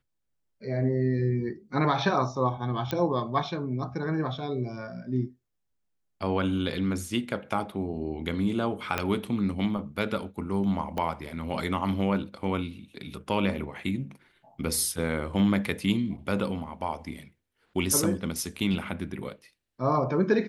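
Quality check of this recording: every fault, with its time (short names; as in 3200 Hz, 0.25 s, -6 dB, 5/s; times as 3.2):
2.91 pop -14 dBFS
8.98 pop -11 dBFS
10.98 pop -18 dBFS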